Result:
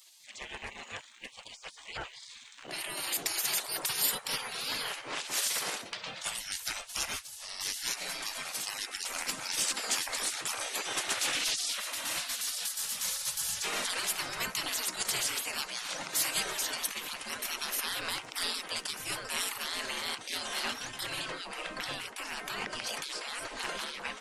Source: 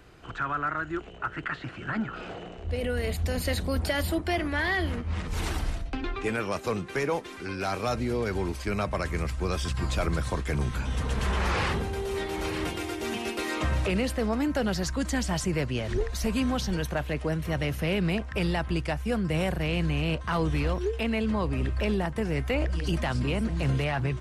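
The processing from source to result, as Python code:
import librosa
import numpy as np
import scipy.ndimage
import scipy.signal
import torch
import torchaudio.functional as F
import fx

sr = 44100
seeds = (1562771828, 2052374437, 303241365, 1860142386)

y = fx.spec_gate(x, sr, threshold_db=-25, keep='weak')
y = fx.high_shelf(y, sr, hz=4400.0, db=fx.steps((0.0, 9.0), (21.27, 2.0)))
y = F.gain(torch.from_numpy(y), 6.0).numpy()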